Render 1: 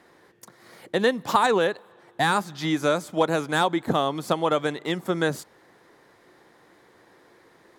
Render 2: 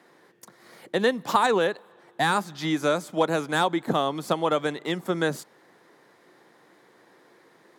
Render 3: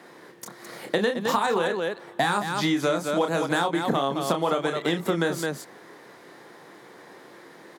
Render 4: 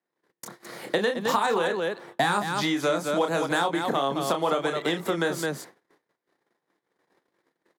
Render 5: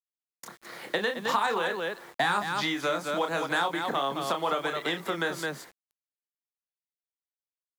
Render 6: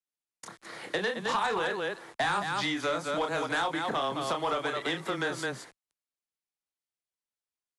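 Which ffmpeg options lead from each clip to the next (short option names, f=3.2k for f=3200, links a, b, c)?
-af "highpass=f=130:w=0.5412,highpass=f=130:w=1.3066,volume=-1dB"
-filter_complex "[0:a]asplit=2[a][b];[b]aecho=0:1:29.15|212.8:0.501|0.355[c];[a][c]amix=inputs=2:normalize=0,acompressor=threshold=-29dB:ratio=6,volume=8dB"
-filter_complex "[0:a]agate=range=-38dB:threshold=-43dB:ratio=16:detection=peak,acrossover=split=330|1800[a][b][c];[a]alimiter=level_in=3.5dB:limit=-24dB:level=0:latency=1:release=298,volume=-3.5dB[d];[d][b][c]amix=inputs=3:normalize=0"
-filter_complex "[0:a]highpass=f=100:w=0.5412,highpass=f=100:w=1.3066,acrossover=split=840|4600[a][b][c];[b]acontrast=69[d];[a][d][c]amix=inputs=3:normalize=0,acrusher=bits=7:mix=0:aa=0.000001,volume=-6.5dB"
-af "afreqshift=-13,asoftclip=type=tanh:threshold=-21.5dB" -ar 24000 -c:a aac -b:a 96k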